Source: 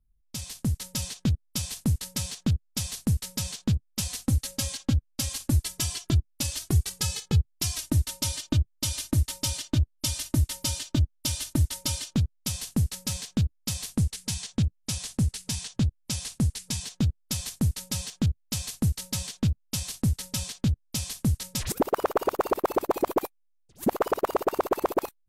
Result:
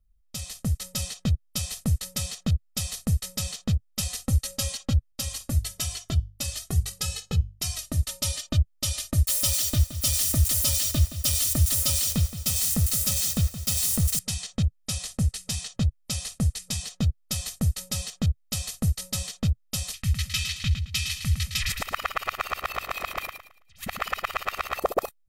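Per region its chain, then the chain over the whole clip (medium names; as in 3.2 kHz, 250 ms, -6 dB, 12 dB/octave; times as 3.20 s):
5.12–8.03 s: hum notches 50/100/150/200 Hz + feedback comb 57 Hz, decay 0.25 s, harmonics odd, mix 30%
9.27–14.19 s: zero-crossing glitches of -22.5 dBFS + bit-crushed delay 171 ms, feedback 55%, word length 7-bit, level -12 dB
19.93–24.79 s: FFT filter 110 Hz 0 dB, 440 Hz -21 dB, 2.3 kHz +12 dB, 8.3 kHz -3 dB + feedback delay 109 ms, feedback 31%, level -7 dB
whole clip: peaking EQ 120 Hz -6 dB 0.44 oct; comb 1.6 ms, depth 60%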